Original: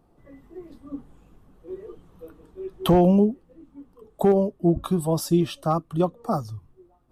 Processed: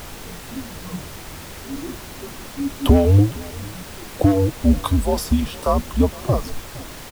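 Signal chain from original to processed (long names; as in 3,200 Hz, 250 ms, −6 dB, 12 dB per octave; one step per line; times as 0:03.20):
in parallel at +2 dB: downward compressor, threshold −25 dBFS, peak gain reduction 11.5 dB
on the sum: two-band tremolo in antiphase 3.8 Hz, depth 70%, crossover 590 Hz
frequency shifter −100 Hz
background noise pink −40 dBFS
on a send: single-tap delay 462 ms −21 dB
on the sum: level +4 dB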